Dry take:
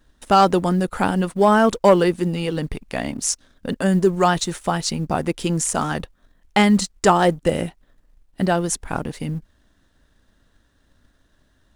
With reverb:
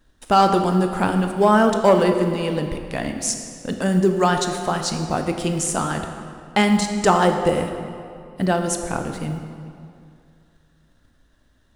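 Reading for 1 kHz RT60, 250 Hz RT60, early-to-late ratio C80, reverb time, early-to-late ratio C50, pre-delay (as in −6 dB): 2.4 s, 2.5 s, 7.0 dB, 2.4 s, 6.0 dB, 17 ms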